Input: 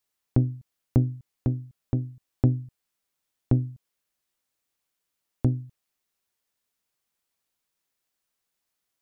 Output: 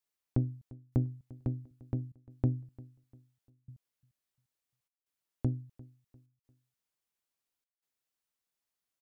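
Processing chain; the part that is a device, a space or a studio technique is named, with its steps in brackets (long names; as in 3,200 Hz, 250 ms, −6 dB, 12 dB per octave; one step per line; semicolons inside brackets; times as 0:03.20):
trance gate with a delay (gate pattern "xxxxxxxx..xxxxx" 163 BPM −60 dB; repeating echo 348 ms, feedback 36%, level −21 dB)
level −8 dB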